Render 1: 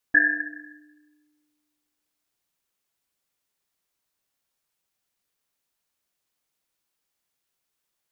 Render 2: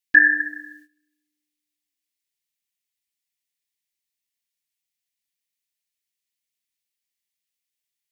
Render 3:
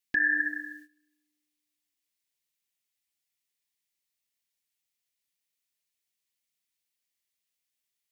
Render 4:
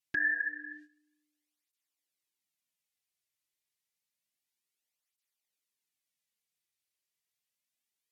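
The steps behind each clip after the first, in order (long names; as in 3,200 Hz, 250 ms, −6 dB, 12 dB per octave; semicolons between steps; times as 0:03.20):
noise gate −52 dBFS, range −16 dB; drawn EQ curve 230 Hz 0 dB, 1,300 Hz −13 dB, 1,900 Hz +9 dB; level +3 dB
downward compressor 6 to 1, threshold −17 dBFS, peak gain reduction 9.5 dB; brickwall limiter −16.5 dBFS, peak gain reduction 9 dB
treble cut that deepens with the level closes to 2,100 Hz, closed at −32.5 dBFS; through-zero flanger with one copy inverted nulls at 0.29 Hz, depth 4.4 ms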